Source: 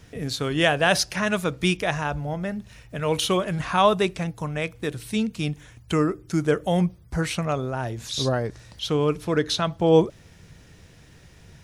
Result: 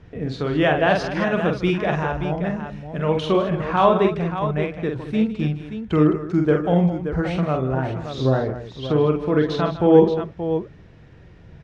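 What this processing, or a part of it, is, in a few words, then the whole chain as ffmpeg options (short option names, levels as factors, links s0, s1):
phone in a pocket: -filter_complex "[0:a]asettb=1/sr,asplit=3[s0][s1][s2];[s0]atrim=end=1.934[s3];[s1]atrim=start=1.93:end=3.06,asetpts=PTS-STARTPTS,afade=t=in:d=0.004:c=qsin,afade=t=out:st=1.126:d=0.004:c=qsin,highshelf=f=5800:g=10.5[s4];[s2]atrim=start=3.056[s5];[s3][s4]acrossfade=d=0.004:c1=hsin:c2=qsin[s6];[s6][s5]acrossfade=d=0.004:c1=qsin:c2=hsin,lowpass=3800,equalizer=f=350:t=o:w=0.36:g=2.5,highshelf=f=2300:g=-11.5,aecho=1:1:46|154|212|578:0.562|0.188|0.237|0.355,volume=1.33"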